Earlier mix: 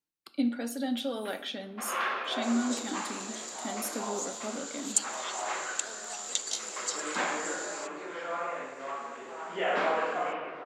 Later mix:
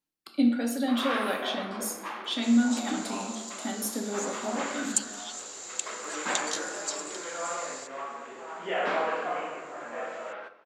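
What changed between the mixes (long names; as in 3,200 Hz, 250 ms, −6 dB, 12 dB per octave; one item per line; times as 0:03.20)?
speech: send +10.5 dB
first sound: entry −0.90 s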